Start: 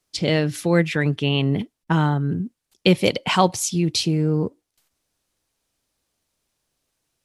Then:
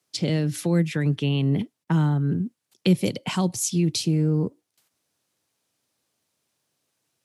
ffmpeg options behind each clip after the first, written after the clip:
-filter_complex "[0:a]highpass=f=99:w=0.5412,highpass=f=99:w=1.3066,acrossover=split=320|5800[a][b][c];[b]acompressor=threshold=-31dB:ratio=5[d];[a][d][c]amix=inputs=3:normalize=0"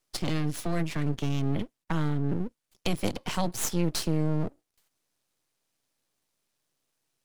-filter_complex "[0:a]acrossover=split=230|4100[a][b][c];[a]alimiter=limit=-23dB:level=0:latency=1:release=28[d];[d][b][c]amix=inputs=3:normalize=0,aeval=exprs='max(val(0),0)':c=same"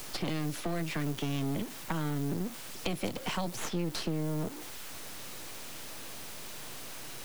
-filter_complex "[0:a]aeval=exprs='val(0)+0.5*0.0211*sgn(val(0))':c=same,acrossover=split=170|3800[a][b][c];[a]acompressor=threshold=-40dB:ratio=4[d];[b]acompressor=threshold=-33dB:ratio=4[e];[c]acompressor=threshold=-46dB:ratio=4[f];[d][e][f]amix=inputs=3:normalize=0,volume=1dB"

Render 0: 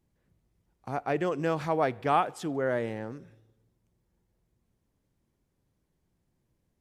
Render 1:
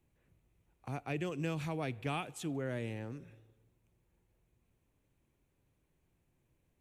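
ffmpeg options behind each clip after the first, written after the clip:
-filter_complex "[0:a]equalizer=f=200:t=o:w=0.33:g=-6,equalizer=f=2.5k:t=o:w=0.33:g=8,equalizer=f=5k:t=o:w=0.33:g=-9,acrossover=split=260|3000[a][b][c];[b]acompressor=threshold=-53dB:ratio=2[d];[a][d][c]amix=inputs=3:normalize=0"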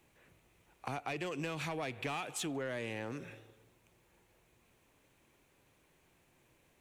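-filter_complex "[0:a]asplit=2[a][b];[b]highpass=f=720:p=1,volume=16dB,asoftclip=type=tanh:threshold=-23.5dB[c];[a][c]amix=inputs=2:normalize=0,lowpass=f=7.6k:p=1,volume=-6dB,acompressor=threshold=-40dB:ratio=6,volume=4dB"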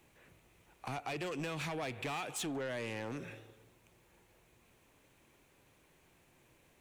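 -af "asoftclip=type=tanh:threshold=-36dB,volume=2.5dB"

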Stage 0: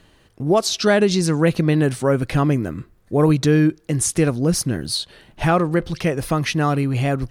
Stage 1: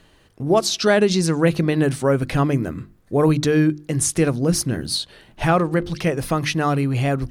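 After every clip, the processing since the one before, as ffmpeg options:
-af "bandreject=f=50:t=h:w=6,bandreject=f=100:t=h:w=6,bandreject=f=150:t=h:w=6,bandreject=f=200:t=h:w=6,bandreject=f=250:t=h:w=6,bandreject=f=300:t=h:w=6,bandreject=f=350:t=h:w=6"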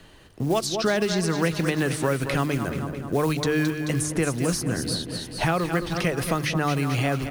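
-filter_complex "[0:a]acrusher=bits=8:mode=log:mix=0:aa=0.000001,aecho=1:1:217|434|651|868|1085|1302:0.251|0.136|0.0732|0.0396|0.0214|0.0115,acrossover=split=99|780|1800[a][b][c][d];[a]acompressor=threshold=-43dB:ratio=4[e];[b]acompressor=threshold=-28dB:ratio=4[f];[c]acompressor=threshold=-35dB:ratio=4[g];[d]acompressor=threshold=-34dB:ratio=4[h];[e][f][g][h]amix=inputs=4:normalize=0,volume=3.5dB"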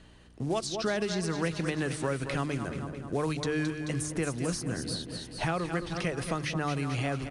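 -af "aeval=exprs='val(0)+0.00355*(sin(2*PI*60*n/s)+sin(2*PI*2*60*n/s)/2+sin(2*PI*3*60*n/s)/3+sin(2*PI*4*60*n/s)/4+sin(2*PI*5*60*n/s)/5)':c=same,aresample=22050,aresample=44100,volume=-7dB"

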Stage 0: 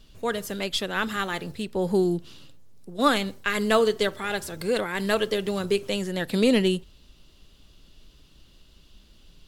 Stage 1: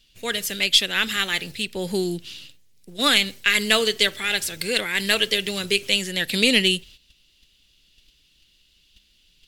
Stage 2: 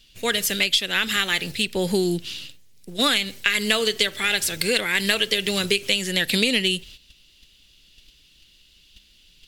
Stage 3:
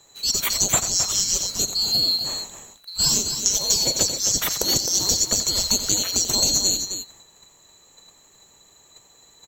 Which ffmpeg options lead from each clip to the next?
-af "agate=range=-11dB:threshold=-46dB:ratio=16:detection=peak,highshelf=f=1.6k:t=q:w=1.5:g=12,volume=-2dB"
-af "acompressor=threshold=-22dB:ratio=6,volume=5dB"
-af "afftfilt=real='real(if(lt(b,736),b+184*(1-2*mod(floor(b/184),2)),b),0)':imag='imag(if(lt(b,736),b+184*(1-2*mod(floor(b/184),2)),b),0)':win_size=2048:overlap=0.75,aecho=1:1:87.46|262.4:0.282|0.398"

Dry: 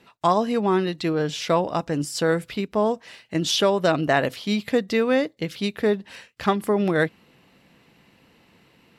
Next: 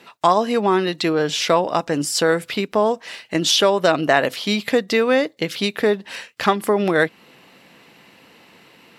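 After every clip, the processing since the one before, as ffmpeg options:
-filter_complex "[0:a]highpass=f=360:p=1,asplit=2[a][b];[b]acompressor=threshold=-29dB:ratio=6,volume=2.5dB[c];[a][c]amix=inputs=2:normalize=0,volume=2.5dB"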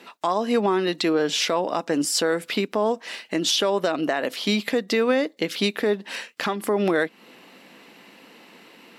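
-af "lowshelf=f=160:t=q:w=1.5:g=-10.5,alimiter=limit=-12dB:level=0:latency=1:release=240"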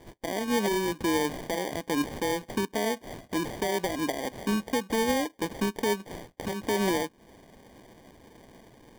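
-filter_complex "[0:a]acrossover=split=560[a][b];[b]acompressor=threshold=-33dB:ratio=6[c];[a][c]amix=inputs=2:normalize=0,acrusher=samples=33:mix=1:aa=0.000001,volume=-3.5dB"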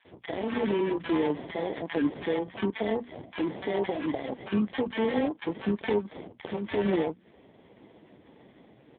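-filter_complex "[0:a]bandreject=f=60:t=h:w=6,bandreject=f=120:t=h:w=6,bandreject=f=180:t=h:w=6,bandreject=f=240:t=h:w=6,acrossover=split=1100[a][b];[a]adelay=50[c];[c][b]amix=inputs=2:normalize=0,volume=2dB" -ar 8000 -c:a libopencore_amrnb -b:a 4750

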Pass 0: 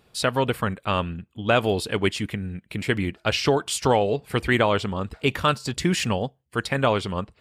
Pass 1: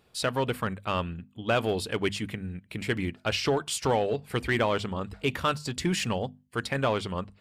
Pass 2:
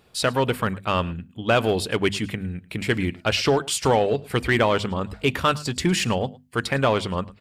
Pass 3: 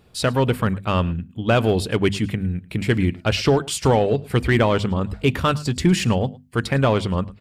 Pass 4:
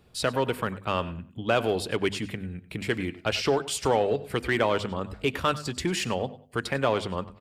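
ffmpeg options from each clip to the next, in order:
-filter_complex "[0:a]bandreject=f=50:t=h:w=6,bandreject=f=100:t=h:w=6,bandreject=f=150:t=h:w=6,bandreject=f=200:t=h:w=6,bandreject=f=250:t=h:w=6,asplit=2[a][b];[b]volume=18.5dB,asoftclip=hard,volume=-18.5dB,volume=-3.5dB[c];[a][c]amix=inputs=2:normalize=0,volume=-8.5dB"
-af "aecho=1:1:108:0.0794,volume=6dB"
-af "lowshelf=f=310:g=9,volume=-1dB"
-filter_complex "[0:a]acrossover=split=300[a][b];[a]acompressor=threshold=-30dB:ratio=6[c];[b]asplit=2[d][e];[e]adelay=94,lowpass=f=4.3k:p=1,volume=-17dB,asplit=2[f][g];[g]adelay=94,lowpass=f=4.3k:p=1,volume=0.3,asplit=2[h][i];[i]adelay=94,lowpass=f=4.3k:p=1,volume=0.3[j];[d][f][h][j]amix=inputs=4:normalize=0[k];[c][k]amix=inputs=2:normalize=0,volume=-4.5dB"

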